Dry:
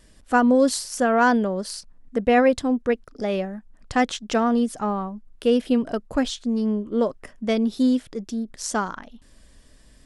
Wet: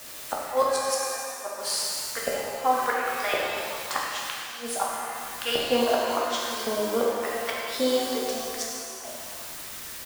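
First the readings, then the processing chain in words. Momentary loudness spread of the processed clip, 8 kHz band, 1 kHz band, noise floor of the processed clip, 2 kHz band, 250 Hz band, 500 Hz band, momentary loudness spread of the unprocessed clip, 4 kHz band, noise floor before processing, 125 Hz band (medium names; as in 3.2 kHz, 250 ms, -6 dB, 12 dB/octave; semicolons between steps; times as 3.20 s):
10 LU, +3.5 dB, -2.5 dB, -39 dBFS, -3.0 dB, -14.5 dB, -4.0 dB, 13 LU, +4.5 dB, -53 dBFS, no reading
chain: LFO high-pass saw up 0.9 Hz 590–1500 Hz; in parallel at -9 dB: word length cut 6-bit, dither triangular; on the sum: inverted gate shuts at -13 dBFS, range -40 dB; doubling 13 ms -11.5 dB; pitch-shifted reverb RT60 2.2 s, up +7 st, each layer -8 dB, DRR -4 dB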